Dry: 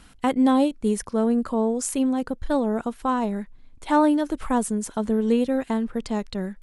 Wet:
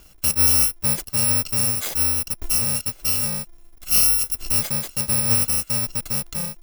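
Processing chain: bit-reversed sample order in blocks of 128 samples; trim +1.5 dB

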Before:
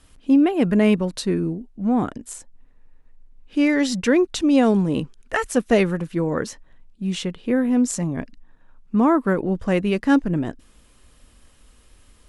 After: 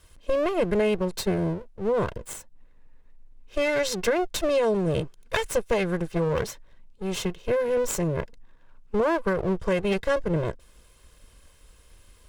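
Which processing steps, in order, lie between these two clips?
comb filter that takes the minimum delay 1.9 ms; compression, threshold -20 dBFS, peak gain reduction 8 dB

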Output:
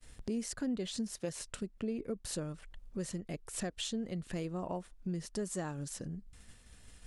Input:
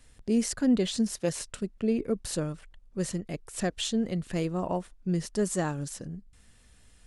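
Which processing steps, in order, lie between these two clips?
expander -52 dBFS; compression 2.5:1, threshold -47 dBFS, peak gain reduction 18 dB; trim +5 dB

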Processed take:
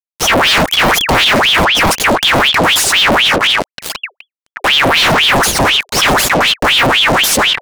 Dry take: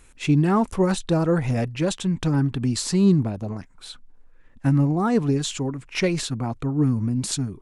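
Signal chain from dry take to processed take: peaking EQ 4.8 kHz -8 dB 2 oct; fuzz box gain 48 dB, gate -41 dBFS; ring modulator with a swept carrier 1.9 kHz, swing 80%, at 4 Hz; trim +7 dB

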